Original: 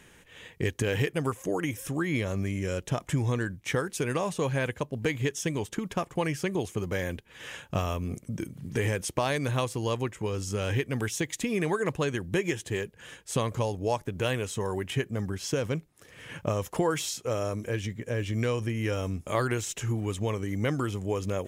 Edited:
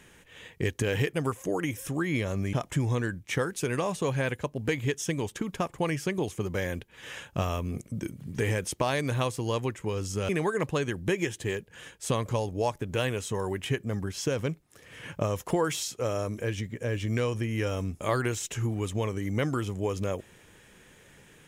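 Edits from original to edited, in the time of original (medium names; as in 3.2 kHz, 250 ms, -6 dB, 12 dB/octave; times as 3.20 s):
2.53–2.90 s: delete
10.66–11.55 s: delete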